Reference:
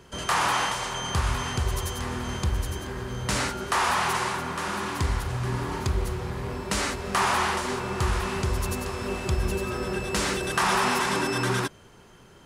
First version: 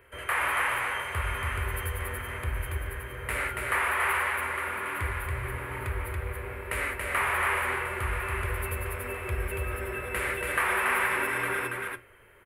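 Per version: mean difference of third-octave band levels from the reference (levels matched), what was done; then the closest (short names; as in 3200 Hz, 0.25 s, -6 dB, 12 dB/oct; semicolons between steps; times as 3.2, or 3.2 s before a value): 7.5 dB: high shelf 3700 Hz -6.5 dB; flange 0.19 Hz, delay 9.8 ms, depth 5.9 ms, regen -74%; EQ curve 110 Hz 0 dB, 160 Hz -17 dB, 530 Hz +4 dB, 790 Hz -4 dB, 2200 Hz +12 dB, 3800 Hz -8 dB, 5900 Hz -19 dB, 11000 Hz +14 dB; echo 0.281 s -3 dB; gain -2 dB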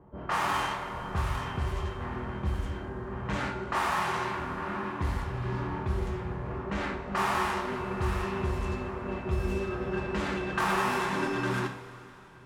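5.5 dB: median filter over 9 samples; on a send: reverse echo 0.642 s -16.5 dB; on the sum: low-pass opened by the level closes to 320 Hz, open at -21 dBFS; two-slope reverb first 0.44 s, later 3.8 s, from -16 dB, DRR 2.5 dB; gain -5.5 dB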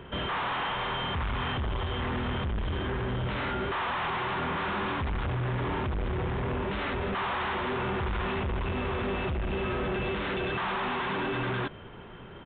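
10.5 dB: limiter -21.5 dBFS, peak gain reduction 9.5 dB; overloaded stage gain 35 dB; air absorption 110 m; downsampling 8000 Hz; gain +7 dB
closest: second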